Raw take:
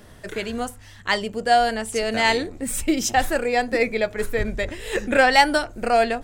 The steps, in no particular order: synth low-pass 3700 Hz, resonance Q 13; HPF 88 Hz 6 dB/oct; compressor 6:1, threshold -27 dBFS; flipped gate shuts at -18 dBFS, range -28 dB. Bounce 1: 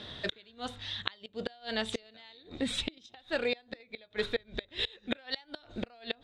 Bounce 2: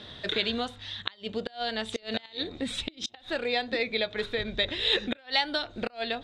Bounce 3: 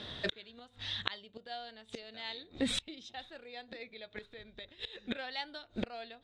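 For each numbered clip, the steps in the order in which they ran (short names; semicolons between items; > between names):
compressor > synth low-pass > flipped gate > HPF; compressor > HPF > flipped gate > synth low-pass; synth low-pass > flipped gate > compressor > HPF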